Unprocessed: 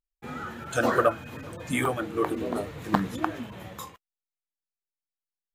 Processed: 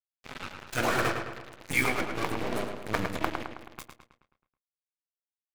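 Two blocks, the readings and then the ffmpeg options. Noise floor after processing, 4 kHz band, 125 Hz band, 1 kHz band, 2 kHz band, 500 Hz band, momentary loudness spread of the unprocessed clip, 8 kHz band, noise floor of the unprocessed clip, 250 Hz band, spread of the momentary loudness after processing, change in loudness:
under -85 dBFS, +3.5 dB, -2.5 dB, -3.5 dB, +2.0 dB, -5.5 dB, 16 LU, +1.0 dB, under -85 dBFS, -5.5 dB, 19 LU, -2.5 dB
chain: -filter_complex "[0:a]aeval=exprs='if(lt(val(0),0),0.447*val(0),val(0))':c=same,afftfilt=real='re*lt(hypot(re,im),0.316)':imag='im*lt(hypot(re,im),0.316)':win_size=1024:overlap=0.75,equalizer=f=2300:t=o:w=0.32:g=9,acrusher=bits=4:mix=0:aa=0.5,asplit=2[s0][s1];[s1]adelay=107,lowpass=f=4300:p=1,volume=0.531,asplit=2[s2][s3];[s3]adelay=107,lowpass=f=4300:p=1,volume=0.53,asplit=2[s4][s5];[s5]adelay=107,lowpass=f=4300:p=1,volume=0.53,asplit=2[s6][s7];[s7]adelay=107,lowpass=f=4300:p=1,volume=0.53,asplit=2[s8][s9];[s9]adelay=107,lowpass=f=4300:p=1,volume=0.53,asplit=2[s10][s11];[s11]adelay=107,lowpass=f=4300:p=1,volume=0.53,asplit=2[s12][s13];[s13]adelay=107,lowpass=f=4300:p=1,volume=0.53[s14];[s2][s4][s6][s8][s10][s12][s14]amix=inputs=7:normalize=0[s15];[s0][s15]amix=inputs=2:normalize=0"

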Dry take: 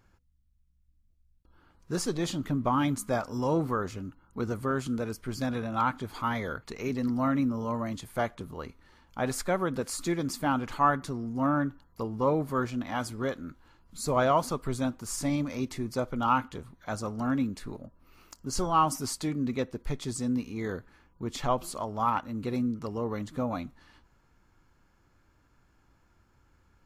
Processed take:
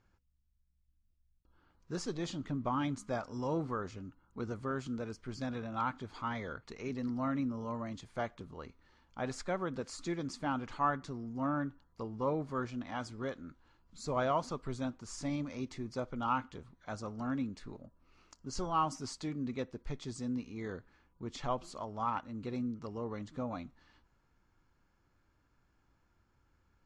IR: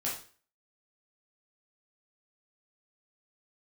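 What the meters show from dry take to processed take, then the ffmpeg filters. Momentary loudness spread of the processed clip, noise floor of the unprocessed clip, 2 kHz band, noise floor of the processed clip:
11 LU, -66 dBFS, -7.5 dB, -74 dBFS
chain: -af "lowpass=f=7100:w=0.5412,lowpass=f=7100:w=1.3066,volume=0.422"

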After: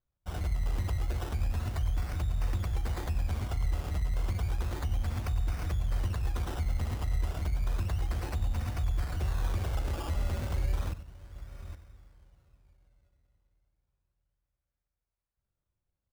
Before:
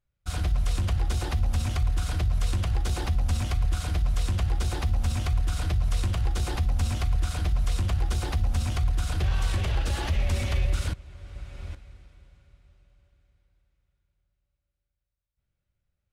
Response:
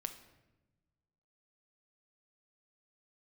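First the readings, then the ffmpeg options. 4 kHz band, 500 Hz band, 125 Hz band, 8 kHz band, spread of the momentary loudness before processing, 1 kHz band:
-10.0 dB, -4.0 dB, -5.5 dB, -10.0 dB, 4 LU, -5.0 dB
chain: -filter_complex "[0:a]asplit=2[s0][s1];[s1]adelay=94,lowpass=f=2000:p=1,volume=0.224,asplit=2[s2][s3];[s3]adelay=94,lowpass=f=2000:p=1,volume=0.36,asplit=2[s4][s5];[s5]adelay=94,lowpass=f=2000:p=1,volume=0.36,asplit=2[s6][s7];[s7]adelay=94,lowpass=f=2000:p=1,volume=0.36[s8];[s0][s2][s4][s6][s8]amix=inputs=5:normalize=0,acrusher=samples=17:mix=1:aa=0.000001:lfo=1:lforange=10.2:lforate=0.32,volume=0.501"

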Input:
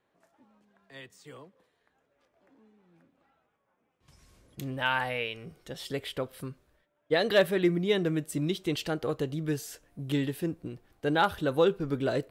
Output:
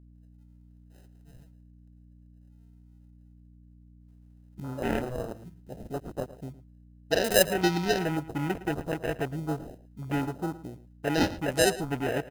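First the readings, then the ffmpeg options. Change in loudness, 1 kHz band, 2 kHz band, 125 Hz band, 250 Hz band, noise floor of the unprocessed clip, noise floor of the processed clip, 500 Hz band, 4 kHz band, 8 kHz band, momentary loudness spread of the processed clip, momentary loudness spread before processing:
0.0 dB, -0.5 dB, 0.0 dB, +0.5 dB, 0.0 dB, -76 dBFS, -55 dBFS, -0.5 dB, +1.0 dB, +10.0 dB, 19 LU, 18 LU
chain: -filter_complex "[0:a]acrusher=samples=39:mix=1:aa=0.000001,aemphasis=mode=production:type=cd,afwtdn=0.0158,aeval=exprs='val(0)+0.00251*(sin(2*PI*60*n/s)+sin(2*PI*2*60*n/s)/2+sin(2*PI*3*60*n/s)/3+sin(2*PI*4*60*n/s)/4+sin(2*PI*5*60*n/s)/5)':c=same,asplit=2[s0][s1];[s1]adelay=110.8,volume=0.158,highshelf=f=4000:g=-2.49[s2];[s0][s2]amix=inputs=2:normalize=0"

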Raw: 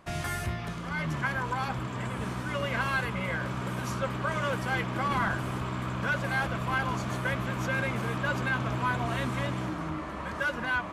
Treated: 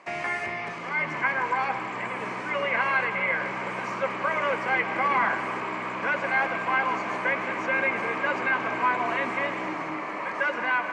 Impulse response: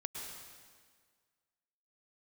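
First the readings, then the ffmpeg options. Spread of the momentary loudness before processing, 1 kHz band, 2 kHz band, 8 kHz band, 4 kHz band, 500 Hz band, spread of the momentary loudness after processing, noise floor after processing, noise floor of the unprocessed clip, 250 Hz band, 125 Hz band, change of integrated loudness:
6 LU, +6.0 dB, +5.5 dB, no reading, -0.5 dB, +4.5 dB, 7 LU, -33 dBFS, -37 dBFS, -2.5 dB, -13.0 dB, +4.5 dB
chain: -filter_complex "[0:a]highpass=450,equalizer=f=630:t=q:w=4:g=-3,equalizer=f=1400:t=q:w=4:g=-7,equalizer=f=2200:t=q:w=4:g=7,equalizer=f=3500:t=q:w=4:g=-9,lowpass=f=8000:w=0.5412,lowpass=f=8000:w=1.3066,acrossover=split=2900[s0][s1];[s1]acompressor=threshold=0.00158:ratio=4:attack=1:release=60[s2];[s0][s2]amix=inputs=2:normalize=0,asplit=2[s3][s4];[1:a]atrim=start_sample=2205,lowpass=5000[s5];[s4][s5]afir=irnorm=-1:irlink=0,volume=0.668[s6];[s3][s6]amix=inputs=2:normalize=0,volume=1.68"

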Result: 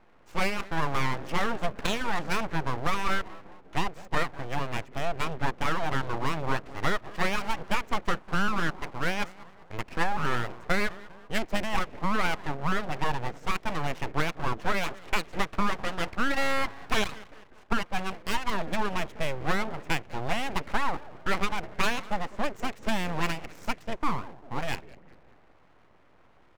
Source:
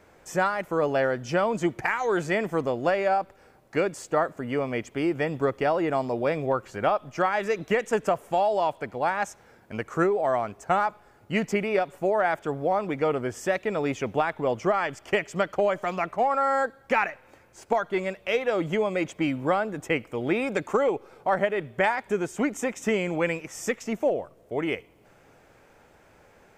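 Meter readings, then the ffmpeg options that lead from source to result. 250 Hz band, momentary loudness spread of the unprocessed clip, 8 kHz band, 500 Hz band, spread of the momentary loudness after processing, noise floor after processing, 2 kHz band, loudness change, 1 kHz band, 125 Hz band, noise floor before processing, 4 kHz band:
-4.5 dB, 5 LU, -0.5 dB, -10.5 dB, 6 LU, -57 dBFS, -0.5 dB, -4.5 dB, -3.5 dB, +0.5 dB, -57 dBFS, +5.0 dB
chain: -filter_complex "[0:a]asplit=5[s0][s1][s2][s3][s4];[s1]adelay=198,afreqshift=-120,volume=0.119[s5];[s2]adelay=396,afreqshift=-240,volume=0.0631[s6];[s3]adelay=594,afreqshift=-360,volume=0.0335[s7];[s4]adelay=792,afreqshift=-480,volume=0.0178[s8];[s0][s5][s6][s7][s8]amix=inputs=5:normalize=0,adynamicsmooth=sensitivity=7.5:basefreq=1500,aeval=exprs='abs(val(0))':c=same"

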